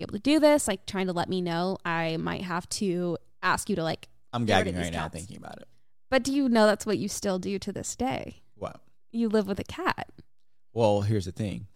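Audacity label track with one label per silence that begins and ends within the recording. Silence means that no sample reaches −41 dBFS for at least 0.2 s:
3.170000	3.420000	silence
4.040000	4.330000	silence
5.630000	6.120000	silence
8.330000	8.620000	silence
8.760000	9.140000	silence
10.200000	10.760000	silence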